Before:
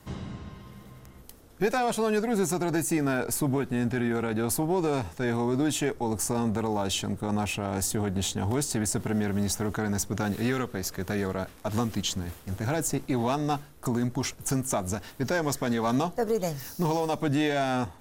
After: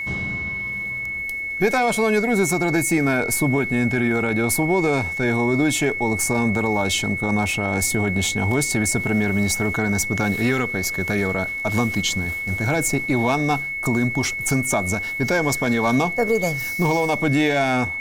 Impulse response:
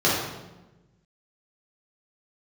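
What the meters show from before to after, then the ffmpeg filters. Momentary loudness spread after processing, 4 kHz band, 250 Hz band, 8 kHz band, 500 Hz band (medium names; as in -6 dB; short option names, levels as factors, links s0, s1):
4 LU, +6.5 dB, +6.5 dB, +6.5 dB, +6.5 dB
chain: -af "acontrast=63,aeval=exprs='val(0)+0.0562*sin(2*PI*2200*n/s)':c=same"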